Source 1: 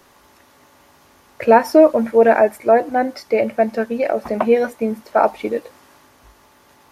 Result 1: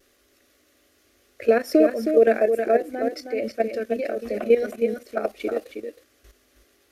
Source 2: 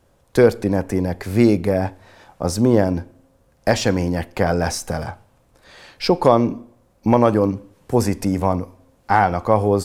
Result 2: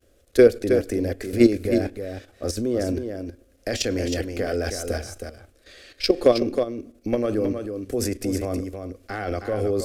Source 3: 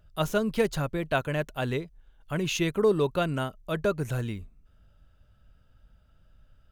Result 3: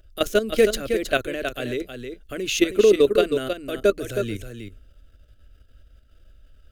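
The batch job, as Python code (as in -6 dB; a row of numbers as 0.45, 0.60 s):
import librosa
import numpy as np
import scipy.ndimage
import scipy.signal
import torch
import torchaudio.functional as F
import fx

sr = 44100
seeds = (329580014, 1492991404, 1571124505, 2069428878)

p1 = fx.vibrato(x, sr, rate_hz=0.4, depth_cents=13.0)
p2 = fx.level_steps(p1, sr, step_db=12)
p3 = fx.fixed_phaser(p2, sr, hz=380.0, stages=4)
p4 = p3 + fx.echo_single(p3, sr, ms=317, db=-7.0, dry=0)
y = p4 * 10.0 ** (-24 / 20.0) / np.sqrt(np.mean(np.square(p4)))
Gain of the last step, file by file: +0.5, +3.0, +12.0 dB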